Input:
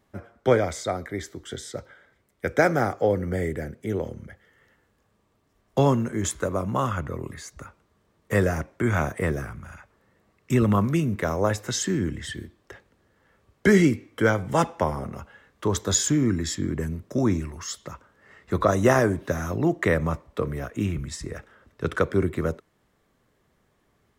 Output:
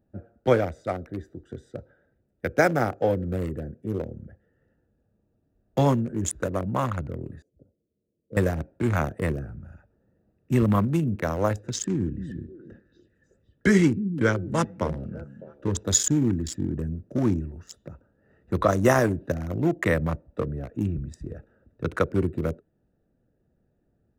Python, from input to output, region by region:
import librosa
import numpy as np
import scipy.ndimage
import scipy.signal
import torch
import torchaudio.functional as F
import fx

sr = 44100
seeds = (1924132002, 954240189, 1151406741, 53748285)

y = fx.chain(x, sr, fx.cheby2_lowpass(hz=1000.0, order=4, stop_db=40),
    fx.tilt_eq(slope=4.5), at=(7.42, 8.37))
y = fx.chain(y, sr, fx.lowpass(hz=8600.0, slope=12),
    fx.peak_eq(hz=760.0, db=-8.5, octaves=0.58),
    fx.echo_stepped(ms=303, hz=190.0, octaves=1.4, feedback_pct=70, wet_db=-8.0), at=(11.58, 15.83))
y = fx.wiener(y, sr, points=41)
y = fx.high_shelf(y, sr, hz=8800.0, db=7.5)
y = fx.notch(y, sr, hz=410.0, q=12.0)